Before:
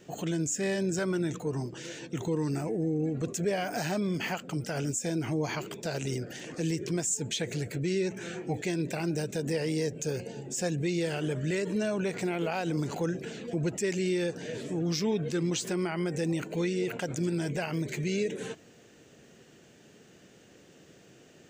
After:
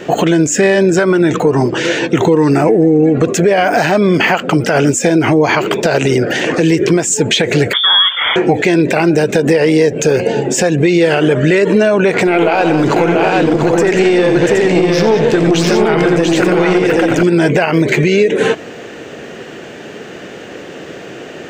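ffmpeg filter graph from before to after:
-filter_complex "[0:a]asettb=1/sr,asplit=3[s0][s1][s2];[s0]atrim=end=7.734[s3];[s1]atrim=start=7.73:end=8.36,asetpts=PTS-STARTPTS,afade=t=in:d=0.004:c=qsin,afade=t=out:st=0.626:d=0.004:c=qsin,highpass=260,lowpass=f=3100:t=q:w=0.5098,lowpass=f=3100:t=q:w=0.6013,lowpass=f=3100:t=q:w=0.9,lowpass=f=3100:t=q:w=2.563,afreqshift=-3700[s4];[s2]atrim=start=8.356[s5];[s3][s4]acrossfade=d=0.004:c1=hsin:c2=qsin[s6];[s6][s5]acrossfade=d=0.004:c1=qsin:c2=hsin,asettb=1/sr,asplit=3[s7][s8][s9];[s7]atrim=end=12.274[s10];[s8]atrim=start=12.27:end=17.23,asetpts=PTS-STARTPTS,afade=t=in:d=0.004:c=qsin,afade=t=out:st=4.956:d=0.004:c=qsin,aecho=1:1:89|189|690|772:0.316|0.251|0.631|0.631,atrim=end_sample=218736,aeval=exprs='(tanh(10*val(0)+0.5)-tanh(0.5))/10':c=same[s11];[s9]atrim=start=17.226[s12];[s10][s11]acrossfade=d=0.004:c1=hsin:c2=qsin[s13];[s13][s12]acrossfade=d=0.004:c1=qsin:c2=hsin,bass=f=250:g=-10,treble=f=4000:g=-14,acompressor=threshold=0.0158:ratio=6,alimiter=level_in=33.5:limit=0.891:release=50:level=0:latency=1,volume=0.891"

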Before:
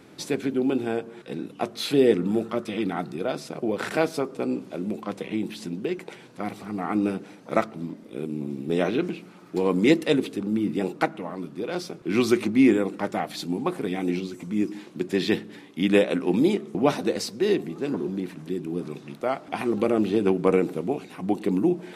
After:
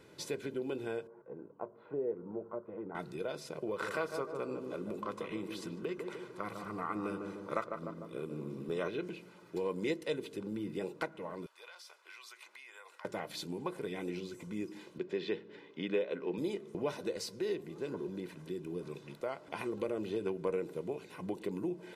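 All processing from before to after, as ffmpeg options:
-filter_complex "[0:a]asettb=1/sr,asplit=3[s0][s1][s2];[s0]atrim=end=1.074[s3];[s1]atrim=start=1.07:end=2.95,asetpts=PTS-STARTPTS,afade=t=in:d=0.004:c=qsin,afade=t=out:st=1.876:d=0.004:c=qsin,lowpass=f=1100:w=0.5412,lowpass=f=1100:w=1.3066,lowshelf=f=440:g=-9.5[s4];[s2]atrim=start=2.946[s5];[s3][s4]acrossfade=d=0.004:c1=hsin:c2=qsin[s6];[s6][s5]acrossfade=d=0.004:c1=qsin:c2=hsin,asettb=1/sr,asplit=3[s7][s8][s9];[s7]atrim=end=3.674[s10];[s8]atrim=start=3.67:end=8.88,asetpts=PTS-STARTPTS,afade=t=in:d=0.004:c=qsin,afade=t=out:st=5.206:d=0.004:c=qsin,equalizer=f=1200:w=3.8:g=13,asplit=2[s11][s12];[s12]adelay=150,lowpass=f=990:p=1,volume=0.501,asplit=2[s13][s14];[s14]adelay=150,lowpass=f=990:p=1,volume=0.54,asplit=2[s15][s16];[s16]adelay=150,lowpass=f=990:p=1,volume=0.54,asplit=2[s17][s18];[s18]adelay=150,lowpass=f=990:p=1,volume=0.54,asplit=2[s19][s20];[s20]adelay=150,lowpass=f=990:p=1,volume=0.54,asplit=2[s21][s22];[s22]adelay=150,lowpass=f=990:p=1,volume=0.54,asplit=2[s23][s24];[s24]adelay=150,lowpass=f=990:p=1,volume=0.54[s25];[s11][s13][s15][s17][s19][s21][s23][s25]amix=inputs=8:normalize=0,atrim=end_sample=229761[s26];[s9]atrim=start=8.876[s27];[s10][s26]acrossfade=d=0.004:c1=hsin:c2=qsin[s28];[s28][s27]acrossfade=d=0.004:c1=qsin:c2=hsin,asettb=1/sr,asplit=3[s29][s30][s31];[s29]atrim=end=11.464[s32];[s30]atrim=start=11.46:end=13.05,asetpts=PTS-STARTPTS,afade=t=in:d=0.004:c=qsin,afade=t=out:st=1.586:d=0.004:c=qsin,highpass=f=840:w=0.5412,highpass=f=840:w=1.3066,acompressor=threshold=0.00891:ratio=20:attack=3.2:release=140:knee=1:detection=peak[s33];[s31]atrim=start=13.046[s34];[s32][s33]acrossfade=d=0.004:c1=hsin:c2=qsin[s35];[s35][s34]acrossfade=d=0.004:c1=qsin:c2=hsin,asettb=1/sr,asplit=3[s36][s37][s38];[s36]atrim=end=14.984[s39];[s37]atrim=start=14.98:end=16.38,asetpts=PTS-STARTPTS,afade=t=in:d=0.004:c=qsin,afade=t=out:st=1.396:d=0.004:c=qsin,highpass=150,lowpass=3700,equalizer=f=430:t=o:w=0.28:g=5[s40];[s38]atrim=start=16.376[s41];[s39][s40]acrossfade=d=0.004:c1=hsin:c2=qsin[s42];[s42][s41]acrossfade=d=0.004:c1=qsin:c2=hsin,aecho=1:1:2:0.54,acompressor=threshold=0.0355:ratio=2,volume=0.398"

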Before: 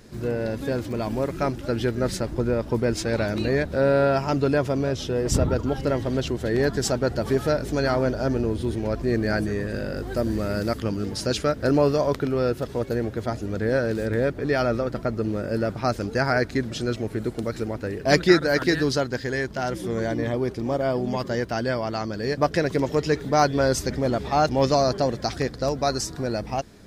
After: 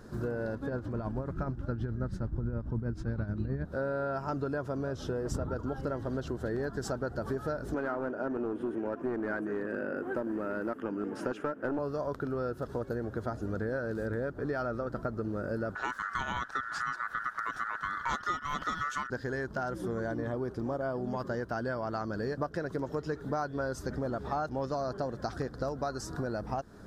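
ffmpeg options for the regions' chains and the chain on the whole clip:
-filter_complex "[0:a]asettb=1/sr,asplit=3[s0][s1][s2];[s0]atrim=end=0.554[s3];[s1]atrim=start=0.55:end=3.65,asetpts=PTS-STARTPTS,afade=t=in:d=0.004:c=qsin,afade=t=out:st=3.096:d=0.004:c=qsin,lowpass=f=2800:p=1,tremolo=f=9.4:d=0.57,asubboost=boost=8:cutoff=220[s4];[s2]atrim=start=3.646[s5];[s3][s4]acrossfade=d=0.004:c1=hsin:c2=qsin[s6];[s6][s5]acrossfade=d=0.004:c1=qsin:c2=hsin,asettb=1/sr,asplit=3[s7][s8][s9];[s7]atrim=end=7.744[s10];[s8]atrim=start=7.74:end=11.79,asetpts=PTS-STARTPTS,afade=t=in:d=0.004:c=qsin,afade=t=out:st=4.046:d=0.004:c=qsin,highpass=f=280:t=q:w=1.6,highshelf=f=3300:t=q:w=3:g=-8,aeval=exprs='clip(val(0),-1,0.119)':c=same[s11];[s9]atrim=start=11.786[s12];[s10][s11]acrossfade=d=0.004:c1=hsin:c2=qsin[s13];[s13][s12]acrossfade=d=0.004:c1=qsin:c2=hsin,asettb=1/sr,asplit=3[s14][s15][s16];[s14]atrim=end=15.754[s17];[s15]atrim=start=15.75:end=19.1,asetpts=PTS-STARTPTS,afade=t=in:d=0.004:c=qsin,afade=t=out:st=3.346:d=0.004:c=qsin,equalizer=f=2800:t=o:w=1.4:g=7,aeval=exprs='val(0)*sin(2*PI*1600*n/s)':c=same[s18];[s16]atrim=start=19.096[s19];[s17][s18]acrossfade=d=0.004:c1=hsin:c2=qsin[s20];[s20][s19]acrossfade=d=0.004:c1=qsin:c2=hsin,highshelf=f=1800:t=q:w=3:g=-6.5,acompressor=threshold=0.0316:ratio=6,volume=0.891"

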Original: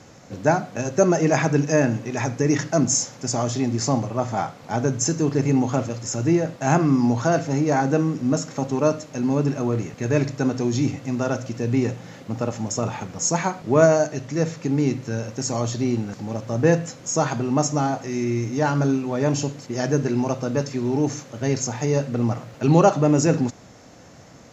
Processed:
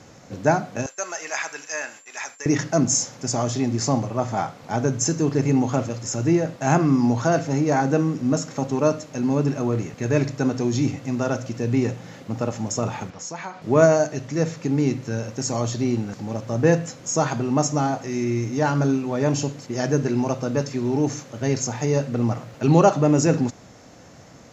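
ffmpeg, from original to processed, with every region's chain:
-filter_complex "[0:a]asettb=1/sr,asplit=3[s0][s1][s2];[s0]atrim=end=0.864[s3];[s1]atrim=start=0.86:end=2.46,asetpts=PTS-STARTPTS,afade=t=in:d=0.004:c=qsin,afade=t=out:st=1.596:d=0.004:c=qsin,agate=range=0.0224:threshold=0.0447:ratio=3:release=100:detection=peak,aeval=exprs='val(0)+0.00355*sin(2*PI*7300*n/s)':c=same,highpass=1300[s4];[s2]atrim=start=2.456[s5];[s3][s4]acrossfade=d=0.004:c1=hsin:c2=qsin[s6];[s6][s5]acrossfade=d=0.004:c1=qsin:c2=hsin,asettb=1/sr,asplit=3[s7][s8][s9];[s7]atrim=end=13.104[s10];[s8]atrim=start=13.1:end=13.62,asetpts=PTS-STARTPTS,afade=t=in:d=0.004:c=qsin,afade=t=out:st=0.516:d=0.004:c=qsin,lowpass=4700,lowshelf=f=490:g=-9.5,acompressor=threshold=0.0224:ratio=2:attack=3.2:release=140:knee=1:detection=peak[s11];[s9]atrim=start=13.616[s12];[s10][s11]acrossfade=d=0.004:c1=hsin:c2=qsin[s13];[s13][s12]acrossfade=d=0.004:c1=qsin:c2=hsin"

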